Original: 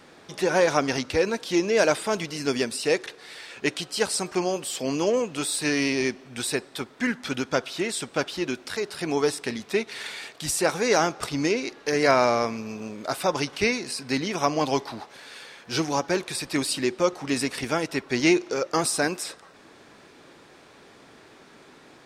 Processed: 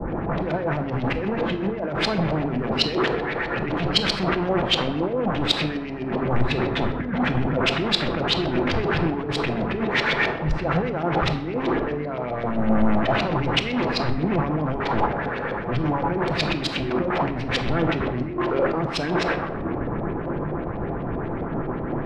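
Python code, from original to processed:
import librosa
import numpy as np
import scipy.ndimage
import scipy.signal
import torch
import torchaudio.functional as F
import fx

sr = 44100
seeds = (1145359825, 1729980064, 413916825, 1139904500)

y = fx.env_lowpass(x, sr, base_hz=1200.0, full_db=-19.0)
y = fx.riaa(y, sr, side='playback')
y = fx.over_compress(y, sr, threshold_db=-33.0, ratio=-1.0)
y = fx.add_hum(y, sr, base_hz=50, snr_db=12)
y = fx.leveller(y, sr, passes=3)
y = 10.0 ** (-20.0 / 20.0) * (np.abs((y / 10.0 ** (-20.0 / 20.0) + 3.0) % 4.0 - 2.0) - 1.0)
y = fx.filter_lfo_lowpass(y, sr, shape='saw_up', hz=7.8, low_hz=570.0, high_hz=4200.0, q=2.1)
y = fx.room_shoebox(y, sr, seeds[0], volume_m3=1100.0, walls='mixed', distance_m=0.77)
y = fx.band_widen(y, sr, depth_pct=100)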